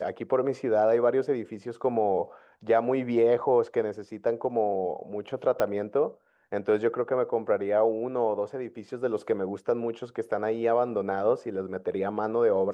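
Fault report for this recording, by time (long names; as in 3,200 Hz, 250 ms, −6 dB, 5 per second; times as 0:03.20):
0:05.60: click −14 dBFS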